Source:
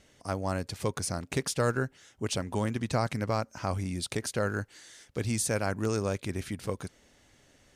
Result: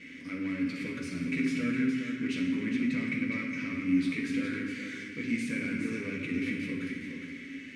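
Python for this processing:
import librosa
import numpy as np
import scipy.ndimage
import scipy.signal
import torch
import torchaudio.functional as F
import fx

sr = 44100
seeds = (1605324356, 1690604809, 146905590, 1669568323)

p1 = fx.power_curve(x, sr, exponent=0.5)
p2 = fx.double_bandpass(p1, sr, hz=770.0, octaves=3.0)
p3 = p2 + fx.echo_single(p2, sr, ms=414, db=-7.5, dry=0)
y = fx.rev_fdn(p3, sr, rt60_s=1.3, lf_ratio=1.2, hf_ratio=0.8, size_ms=36.0, drr_db=-2.0)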